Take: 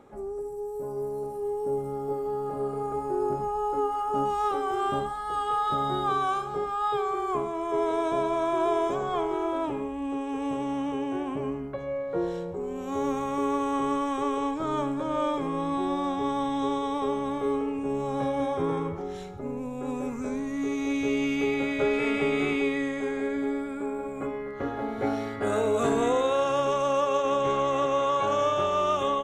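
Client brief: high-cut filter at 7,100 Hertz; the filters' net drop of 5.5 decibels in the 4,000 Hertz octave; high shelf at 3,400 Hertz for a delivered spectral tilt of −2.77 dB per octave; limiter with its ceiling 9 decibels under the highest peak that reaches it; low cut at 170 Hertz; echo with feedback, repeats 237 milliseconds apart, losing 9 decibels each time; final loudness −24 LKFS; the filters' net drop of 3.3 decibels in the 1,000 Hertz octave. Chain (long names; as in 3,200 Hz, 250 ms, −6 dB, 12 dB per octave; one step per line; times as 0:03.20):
high-pass filter 170 Hz
low-pass filter 7,100 Hz
parametric band 1,000 Hz −3.5 dB
high-shelf EQ 3,400 Hz −3.5 dB
parametric band 4,000 Hz −4.5 dB
brickwall limiter −24.5 dBFS
repeating echo 237 ms, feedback 35%, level −9 dB
level +8 dB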